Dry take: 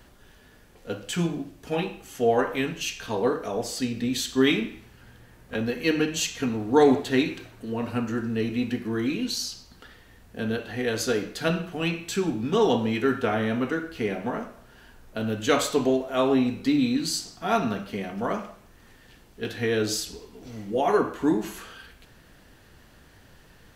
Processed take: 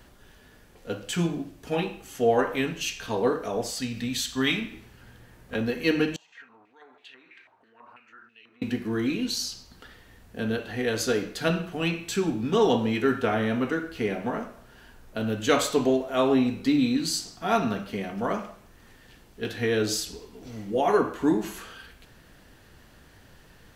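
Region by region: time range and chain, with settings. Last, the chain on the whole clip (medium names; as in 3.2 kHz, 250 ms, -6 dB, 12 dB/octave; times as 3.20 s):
3.70–4.72 s: peaking EQ 370 Hz -10 dB 0.96 oct + tape noise reduction on one side only encoder only
6.16–8.62 s: compression 3:1, threshold -35 dBFS + step-sequenced band-pass 6.1 Hz 890–2700 Hz
whole clip: none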